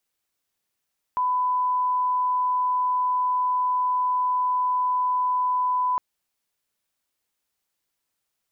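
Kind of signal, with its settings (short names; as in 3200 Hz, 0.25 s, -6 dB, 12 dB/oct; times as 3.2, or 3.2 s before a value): line-up tone -20 dBFS 4.81 s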